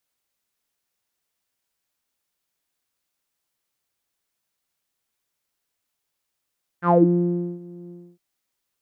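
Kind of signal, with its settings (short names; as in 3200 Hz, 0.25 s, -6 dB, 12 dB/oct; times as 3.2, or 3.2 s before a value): synth note saw F3 12 dB/oct, low-pass 300 Hz, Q 8.6, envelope 2.5 oct, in 0.22 s, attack 79 ms, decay 0.69 s, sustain -23.5 dB, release 0.28 s, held 1.08 s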